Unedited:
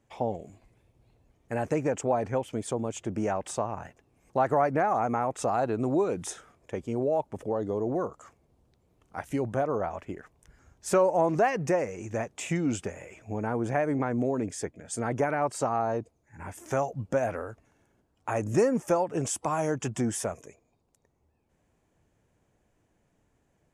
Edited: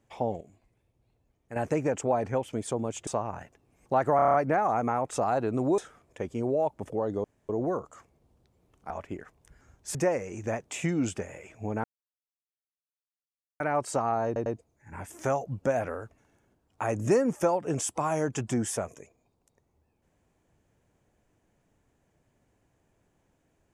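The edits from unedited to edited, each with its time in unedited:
0:00.41–0:01.56: clip gain −7.5 dB
0:03.07–0:03.51: remove
0:04.60: stutter 0.03 s, 7 plays
0:06.04–0:06.31: remove
0:07.77: splice in room tone 0.25 s
0:09.18–0:09.88: remove
0:10.93–0:11.62: remove
0:13.51–0:15.27: silence
0:15.93: stutter 0.10 s, 3 plays

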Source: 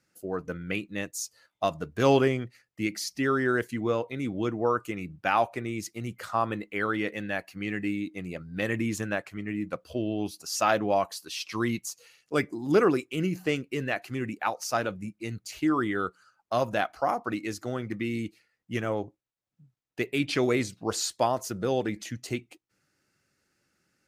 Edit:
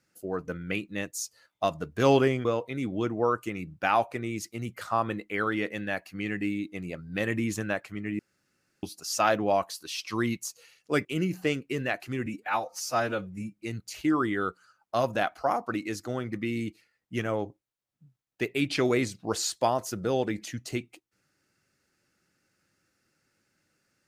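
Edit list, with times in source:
0:02.45–0:03.87: remove
0:09.61–0:10.25: fill with room tone
0:12.47–0:13.07: remove
0:14.28–0:15.16: time-stretch 1.5×

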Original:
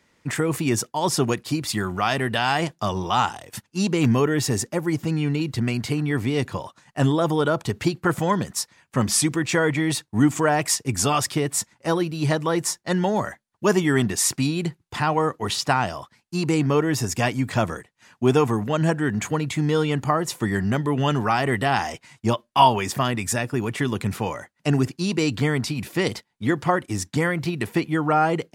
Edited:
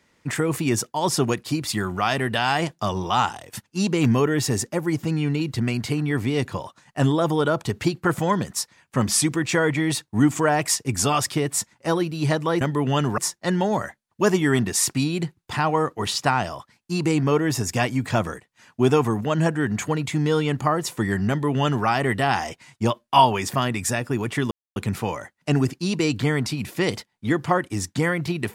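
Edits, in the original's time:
0:20.72–0:21.29: duplicate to 0:12.61
0:23.94: splice in silence 0.25 s

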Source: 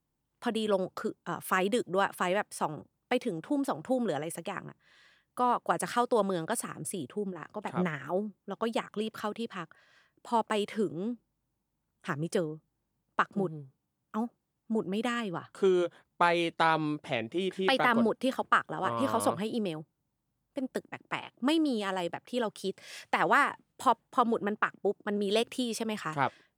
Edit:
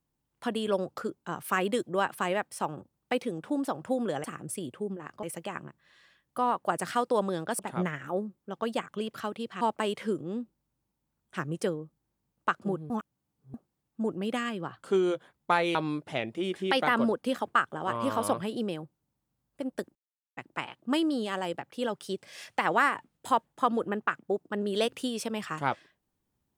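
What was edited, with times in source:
0:06.60–0:07.59: move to 0:04.24
0:09.61–0:10.32: remove
0:13.61–0:14.25: reverse
0:16.46–0:16.72: remove
0:20.92: splice in silence 0.42 s

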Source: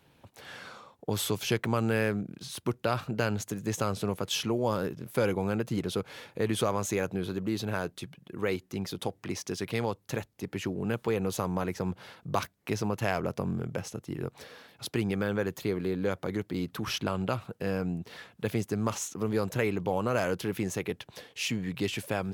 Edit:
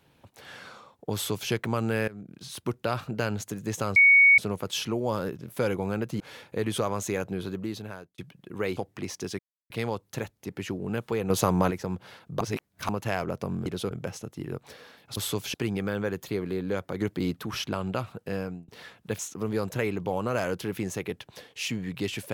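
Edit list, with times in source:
0:01.14–0:01.51: duplicate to 0:14.88
0:02.08–0:02.48: fade in, from −19.5 dB
0:03.96: insert tone 2,230 Hz −13 dBFS 0.42 s
0:05.78–0:06.03: move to 0:13.62
0:07.34–0:08.01: fade out
0:08.60–0:09.04: remove
0:09.66: splice in silence 0.31 s
0:11.26–0:11.67: clip gain +7.5 dB
0:12.37–0:12.85: reverse
0:16.35–0:16.70: clip gain +4 dB
0:17.59–0:18.02: fade out equal-power
0:18.53–0:18.99: remove

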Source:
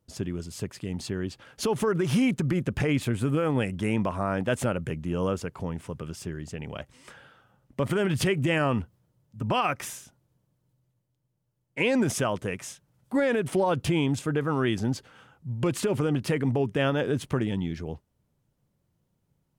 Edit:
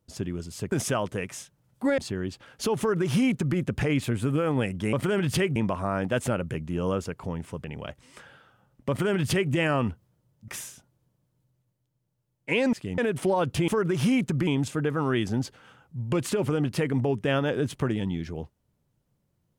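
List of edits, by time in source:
0:00.72–0:00.97: swap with 0:12.02–0:13.28
0:01.78–0:02.57: duplicate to 0:13.98
0:06.00–0:06.55: remove
0:07.80–0:08.43: duplicate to 0:03.92
0:09.39–0:09.77: remove

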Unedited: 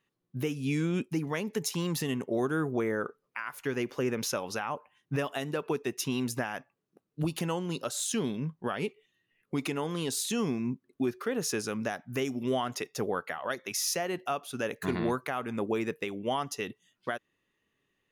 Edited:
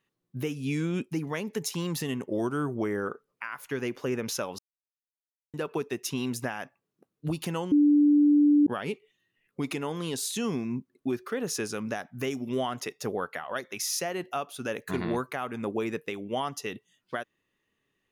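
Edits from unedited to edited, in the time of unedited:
0:02.27–0:03.02: play speed 93%
0:04.53–0:05.48: silence
0:07.66–0:08.61: beep over 293 Hz −16.5 dBFS

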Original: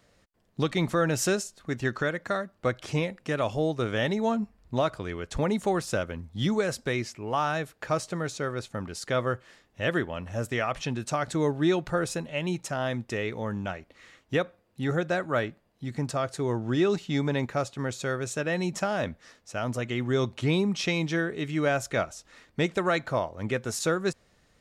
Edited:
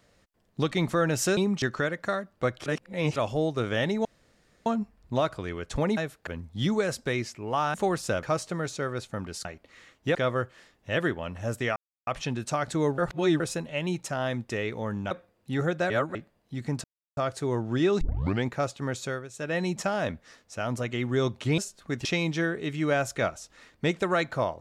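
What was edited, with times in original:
0:01.37–0:01.84: swap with 0:20.55–0:20.80
0:02.88–0:03.38: reverse
0:04.27: splice in room tone 0.61 s
0:05.58–0:06.07: swap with 0:07.54–0:07.84
0:10.67: splice in silence 0.31 s
0:11.58–0:12.00: reverse
0:13.71–0:14.41: move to 0:09.06
0:15.20–0:15.45: reverse
0:16.14: splice in silence 0.33 s
0:16.98: tape start 0.44 s
0:18.01–0:18.52: duck −13.5 dB, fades 0.25 s

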